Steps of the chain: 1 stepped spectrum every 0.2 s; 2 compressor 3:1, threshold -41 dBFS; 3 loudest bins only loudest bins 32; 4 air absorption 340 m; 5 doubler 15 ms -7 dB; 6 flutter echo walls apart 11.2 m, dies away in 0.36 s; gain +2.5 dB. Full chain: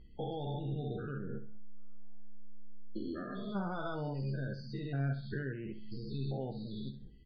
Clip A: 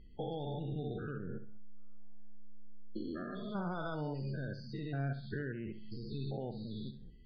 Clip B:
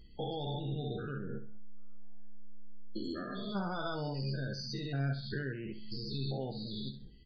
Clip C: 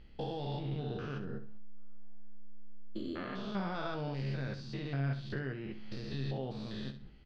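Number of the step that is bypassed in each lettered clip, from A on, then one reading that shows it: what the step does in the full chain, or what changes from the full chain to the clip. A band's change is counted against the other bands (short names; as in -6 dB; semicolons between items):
5, momentary loudness spread change -1 LU; 4, 4 kHz band +9.5 dB; 3, 4 kHz band +4.5 dB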